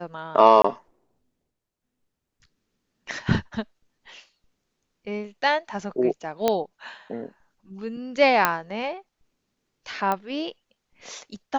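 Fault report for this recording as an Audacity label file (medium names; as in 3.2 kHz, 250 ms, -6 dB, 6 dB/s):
0.620000	0.640000	dropout 24 ms
6.480000	6.480000	pop -7 dBFS
8.450000	8.450000	pop -3 dBFS
10.120000	10.120000	pop -12 dBFS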